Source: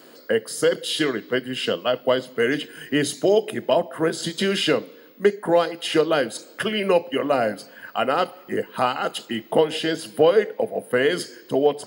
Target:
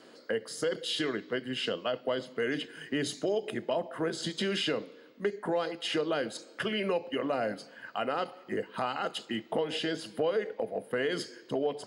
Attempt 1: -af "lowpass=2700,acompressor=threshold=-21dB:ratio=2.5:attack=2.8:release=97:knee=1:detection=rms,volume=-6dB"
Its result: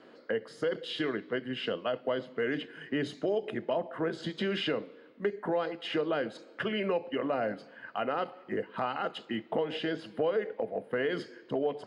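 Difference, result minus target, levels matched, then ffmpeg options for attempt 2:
8,000 Hz band −15.0 dB
-af "lowpass=7500,acompressor=threshold=-21dB:ratio=2.5:attack=2.8:release=97:knee=1:detection=rms,volume=-6dB"

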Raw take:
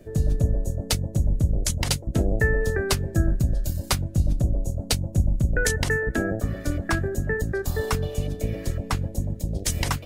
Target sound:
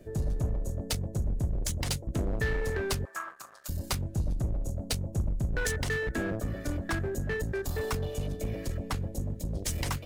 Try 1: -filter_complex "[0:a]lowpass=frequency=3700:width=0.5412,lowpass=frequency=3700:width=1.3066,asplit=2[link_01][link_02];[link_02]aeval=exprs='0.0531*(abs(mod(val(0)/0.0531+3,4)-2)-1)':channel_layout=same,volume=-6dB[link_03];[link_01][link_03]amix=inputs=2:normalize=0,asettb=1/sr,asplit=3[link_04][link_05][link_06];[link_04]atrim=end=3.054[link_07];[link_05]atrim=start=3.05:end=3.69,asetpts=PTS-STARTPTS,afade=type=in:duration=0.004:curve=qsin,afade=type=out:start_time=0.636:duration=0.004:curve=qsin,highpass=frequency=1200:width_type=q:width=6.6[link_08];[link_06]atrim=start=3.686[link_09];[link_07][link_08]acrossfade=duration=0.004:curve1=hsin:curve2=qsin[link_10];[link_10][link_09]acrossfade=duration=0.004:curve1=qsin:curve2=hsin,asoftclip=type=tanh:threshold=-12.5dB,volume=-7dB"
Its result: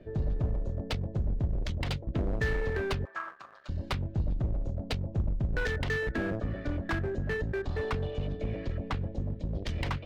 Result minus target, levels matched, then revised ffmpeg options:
4,000 Hz band −3.0 dB
-filter_complex "[0:a]asplit=2[link_01][link_02];[link_02]aeval=exprs='0.0531*(abs(mod(val(0)/0.0531+3,4)-2)-1)':channel_layout=same,volume=-6dB[link_03];[link_01][link_03]amix=inputs=2:normalize=0,asettb=1/sr,asplit=3[link_04][link_05][link_06];[link_04]atrim=end=3.054[link_07];[link_05]atrim=start=3.05:end=3.69,asetpts=PTS-STARTPTS,afade=type=in:duration=0.004:curve=qsin,afade=type=out:start_time=0.636:duration=0.004:curve=qsin,highpass=frequency=1200:width_type=q:width=6.6[link_08];[link_06]atrim=start=3.686[link_09];[link_07][link_08]acrossfade=duration=0.004:curve1=hsin:curve2=qsin[link_10];[link_10][link_09]acrossfade=duration=0.004:curve1=qsin:curve2=hsin,asoftclip=type=tanh:threshold=-12.5dB,volume=-7dB"

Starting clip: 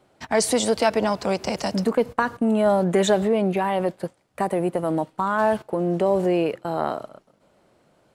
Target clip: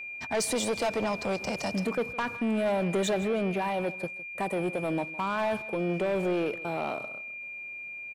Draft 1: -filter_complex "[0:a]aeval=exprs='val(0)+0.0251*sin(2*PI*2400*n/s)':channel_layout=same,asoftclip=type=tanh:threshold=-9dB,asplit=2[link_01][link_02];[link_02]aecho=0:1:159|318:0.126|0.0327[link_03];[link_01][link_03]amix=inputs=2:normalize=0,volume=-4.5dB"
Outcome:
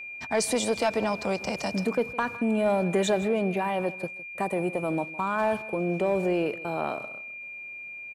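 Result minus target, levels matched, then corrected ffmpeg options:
soft clipping: distortion −12 dB
-filter_complex "[0:a]aeval=exprs='val(0)+0.0251*sin(2*PI*2400*n/s)':channel_layout=same,asoftclip=type=tanh:threshold=-18dB,asplit=2[link_01][link_02];[link_02]aecho=0:1:159|318:0.126|0.0327[link_03];[link_01][link_03]amix=inputs=2:normalize=0,volume=-4.5dB"

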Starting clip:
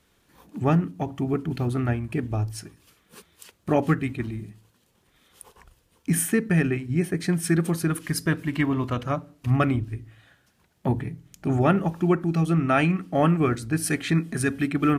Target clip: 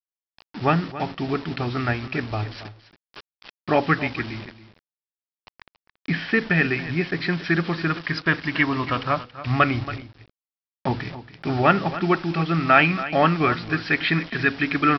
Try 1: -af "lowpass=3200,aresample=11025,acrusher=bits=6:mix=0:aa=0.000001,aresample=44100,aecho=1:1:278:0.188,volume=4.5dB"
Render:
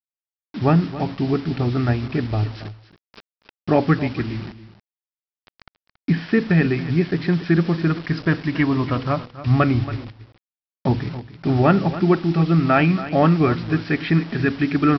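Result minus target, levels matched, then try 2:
1,000 Hz band −4.5 dB
-af "lowpass=3200,tiltshelf=frequency=760:gain=-7.5,aresample=11025,acrusher=bits=6:mix=0:aa=0.000001,aresample=44100,aecho=1:1:278:0.188,volume=4.5dB"

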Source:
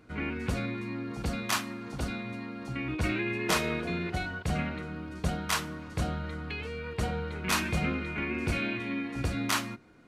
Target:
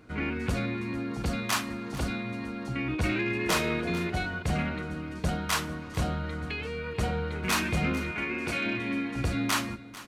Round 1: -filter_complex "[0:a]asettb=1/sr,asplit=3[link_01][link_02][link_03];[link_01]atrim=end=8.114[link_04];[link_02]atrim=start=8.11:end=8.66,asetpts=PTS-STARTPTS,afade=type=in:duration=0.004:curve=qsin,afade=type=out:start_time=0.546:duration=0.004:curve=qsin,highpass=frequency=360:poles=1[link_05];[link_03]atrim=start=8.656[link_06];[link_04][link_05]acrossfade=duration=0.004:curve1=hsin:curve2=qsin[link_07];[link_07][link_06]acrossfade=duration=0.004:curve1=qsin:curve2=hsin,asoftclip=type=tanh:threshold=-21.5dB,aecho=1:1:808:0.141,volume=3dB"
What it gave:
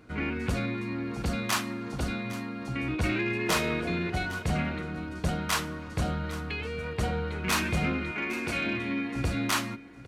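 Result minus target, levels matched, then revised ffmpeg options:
echo 363 ms late
-filter_complex "[0:a]asettb=1/sr,asplit=3[link_01][link_02][link_03];[link_01]atrim=end=8.114[link_04];[link_02]atrim=start=8.11:end=8.66,asetpts=PTS-STARTPTS,afade=type=in:duration=0.004:curve=qsin,afade=type=out:start_time=0.546:duration=0.004:curve=qsin,highpass=frequency=360:poles=1[link_05];[link_03]atrim=start=8.656[link_06];[link_04][link_05]acrossfade=duration=0.004:curve1=hsin:curve2=qsin[link_07];[link_07][link_06]acrossfade=duration=0.004:curve1=qsin:curve2=hsin,asoftclip=type=tanh:threshold=-21.5dB,aecho=1:1:445:0.141,volume=3dB"

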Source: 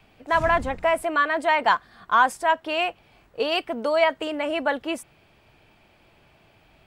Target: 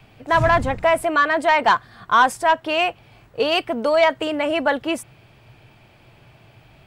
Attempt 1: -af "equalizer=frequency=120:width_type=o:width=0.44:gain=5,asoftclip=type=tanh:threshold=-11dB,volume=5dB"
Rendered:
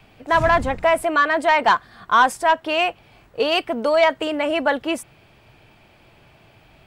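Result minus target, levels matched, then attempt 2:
125 Hz band −4.5 dB
-af "equalizer=frequency=120:width_type=o:width=0.44:gain=13,asoftclip=type=tanh:threshold=-11dB,volume=5dB"

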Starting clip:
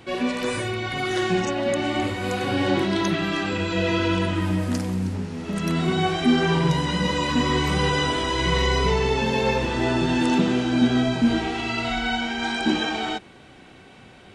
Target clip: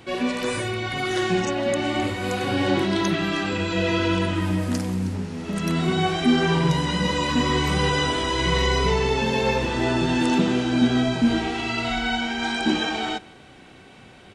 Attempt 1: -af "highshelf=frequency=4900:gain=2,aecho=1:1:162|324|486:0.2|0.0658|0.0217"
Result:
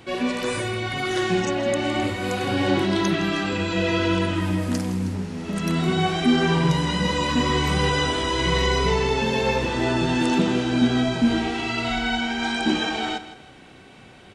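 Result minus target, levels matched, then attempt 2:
echo-to-direct +10 dB
-af "highshelf=frequency=4900:gain=2,aecho=1:1:162|324:0.0631|0.0208"

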